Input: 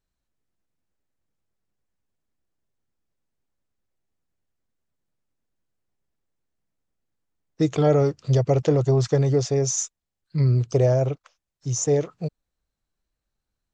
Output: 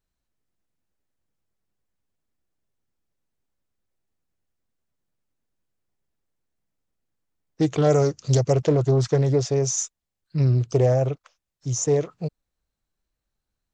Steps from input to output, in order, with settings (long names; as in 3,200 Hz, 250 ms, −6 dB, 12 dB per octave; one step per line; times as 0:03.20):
0:07.82–0:08.53: low-pass with resonance 6,500 Hz, resonance Q 5.3
highs frequency-modulated by the lows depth 0.24 ms